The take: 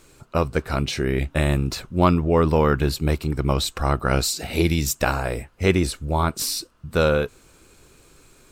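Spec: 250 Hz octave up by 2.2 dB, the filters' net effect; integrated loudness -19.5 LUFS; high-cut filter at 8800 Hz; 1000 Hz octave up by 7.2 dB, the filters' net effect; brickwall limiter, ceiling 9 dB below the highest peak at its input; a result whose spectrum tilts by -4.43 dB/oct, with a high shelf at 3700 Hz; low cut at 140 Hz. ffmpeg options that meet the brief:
-af "highpass=140,lowpass=8.8k,equalizer=f=250:t=o:g=3.5,equalizer=f=1k:t=o:g=8.5,highshelf=f=3.7k:g=3.5,volume=2.5dB,alimiter=limit=-3.5dB:level=0:latency=1"

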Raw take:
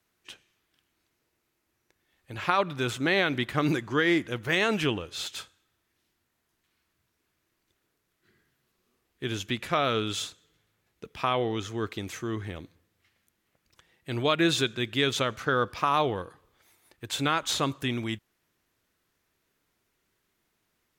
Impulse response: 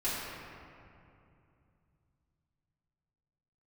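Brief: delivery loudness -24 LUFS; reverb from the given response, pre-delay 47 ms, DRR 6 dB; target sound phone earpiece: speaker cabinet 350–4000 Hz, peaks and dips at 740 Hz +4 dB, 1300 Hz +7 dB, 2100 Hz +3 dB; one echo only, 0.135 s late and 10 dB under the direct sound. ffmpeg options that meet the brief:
-filter_complex "[0:a]aecho=1:1:135:0.316,asplit=2[a][b];[1:a]atrim=start_sample=2205,adelay=47[c];[b][c]afir=irnorm=-1:irlink=0,volume=-13.5dB[d];[a][d]amix=inputs=2:normalize=0,highpass=350,equalizer=f=740:t=q:w=4:g=4,equalizer=f=1.3k:t=q:w=4:g=7,equalizer=f=2.1k:t=q:w=4:g=3,lowpass=f=4k:w=0.5412,lowpass=f=4k:w=1.3066,volume=1.5dB"

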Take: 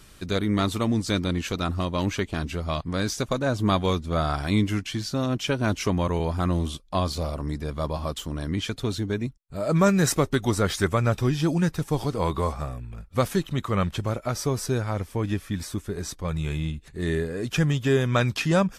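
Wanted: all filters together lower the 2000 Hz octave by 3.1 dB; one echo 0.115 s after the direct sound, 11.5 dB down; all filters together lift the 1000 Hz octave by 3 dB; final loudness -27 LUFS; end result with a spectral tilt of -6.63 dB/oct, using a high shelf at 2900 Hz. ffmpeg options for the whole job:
-af "equalizer=f=1k:t=o:g=6,equalizer=f=2k:t=o:g=-4.5,highshelf=f=2.9k:g=-6.5,aecho=1:1:115:0.266,volume=-1.5dB"

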